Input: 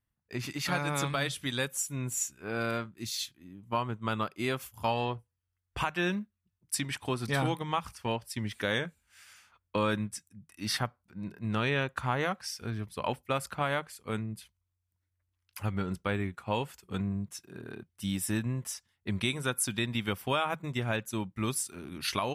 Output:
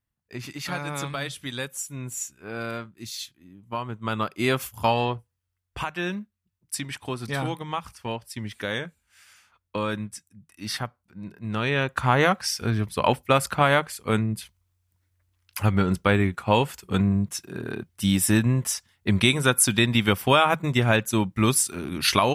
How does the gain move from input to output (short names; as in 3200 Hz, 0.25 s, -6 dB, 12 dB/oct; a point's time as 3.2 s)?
3.78 s 0 dB
4.61 s +10 dB
5.81 s +1 dB
11.43 s +1 dB
12.19 s +11 dB